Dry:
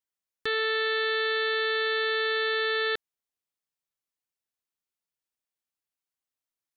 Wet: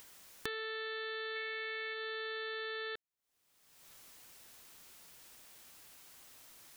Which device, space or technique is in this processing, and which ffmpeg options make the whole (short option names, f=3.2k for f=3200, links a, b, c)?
upward and downward compression: -filter_complex "[0:a]asplit=3[a][b][c];[a]afade=t=out:st=1.35:d=0.02[d];[b]equalizer=f=2.2k:t=o:w=0.38:g=12,afade=t=in:st=1.35:d=0.02,afade=t=out:st=1.93:d=0.02[e];[c]afade=t=in:st=1.93:d=0.02[f];[d][e][f]amix=inputs=3:normalize=0,acompressor=mode=upward:threshold=-40dB:ratio=2.5,acompressor=threshold=-45dB:ratio=6,volume=5.5dB"